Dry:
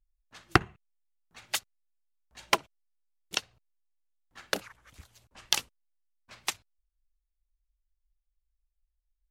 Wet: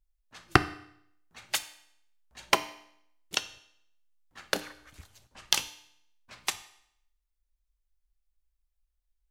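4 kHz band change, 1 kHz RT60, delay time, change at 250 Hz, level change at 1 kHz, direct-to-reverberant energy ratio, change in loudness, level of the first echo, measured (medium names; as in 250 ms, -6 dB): +1.5 dB, 0.70 s, no echo, +1.5 dB, +1.5 dB, 11.0 dB, +1.0 dB, no echo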